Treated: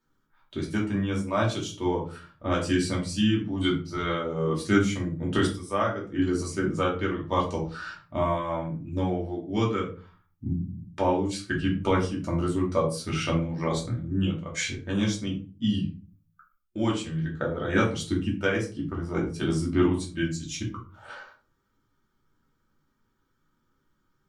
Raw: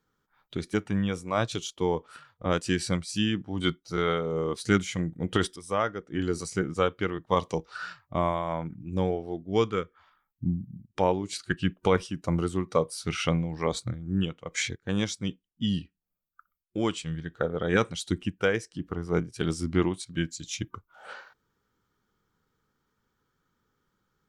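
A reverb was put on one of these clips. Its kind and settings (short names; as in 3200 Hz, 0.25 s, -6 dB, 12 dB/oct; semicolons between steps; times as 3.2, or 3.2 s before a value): shoebox room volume 220 m³, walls furnished, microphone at 2.7 m; gain -4.5 dB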